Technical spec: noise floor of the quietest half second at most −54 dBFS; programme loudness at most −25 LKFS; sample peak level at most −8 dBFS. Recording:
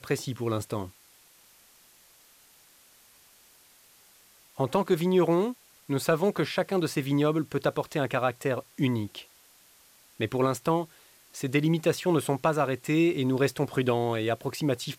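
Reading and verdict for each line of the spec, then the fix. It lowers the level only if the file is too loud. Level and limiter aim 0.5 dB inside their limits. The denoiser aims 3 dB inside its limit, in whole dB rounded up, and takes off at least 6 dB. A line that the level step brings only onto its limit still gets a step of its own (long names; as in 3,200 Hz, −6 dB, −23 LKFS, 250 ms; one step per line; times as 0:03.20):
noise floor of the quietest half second −58 dBFS: in spec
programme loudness −27.5 LKFS: in spec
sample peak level −12.0 dBFS: in spec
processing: no processing needed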